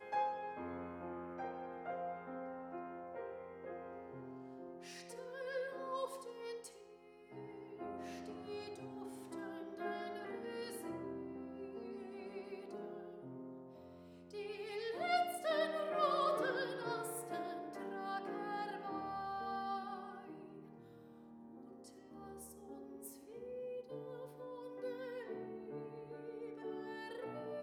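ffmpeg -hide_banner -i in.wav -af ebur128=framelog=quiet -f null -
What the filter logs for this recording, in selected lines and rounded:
Integrated loudness:
  I:         -44.1 LUFS
  Threshold: -54.5 LUFS
Loudness range:
  LRA:        11.8 LU
  Threshold: -64.5 LUFS
  LRA low:   -50.1 LUFS
  LRA high:  -38.3 LUFS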